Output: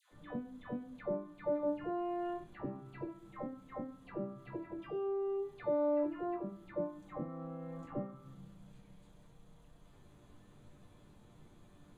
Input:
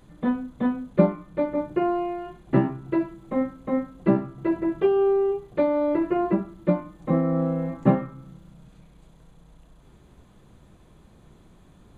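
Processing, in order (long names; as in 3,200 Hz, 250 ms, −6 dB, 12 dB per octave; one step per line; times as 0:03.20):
downward compressor 16 to 1, threshold −30 dBFS, peak gain reduction 19.5 dB
resonators tuned to a chord G2 minor, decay 0.2 s
all-pass dispersion lows, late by 120 ms, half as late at 920 Hz
level +4 dB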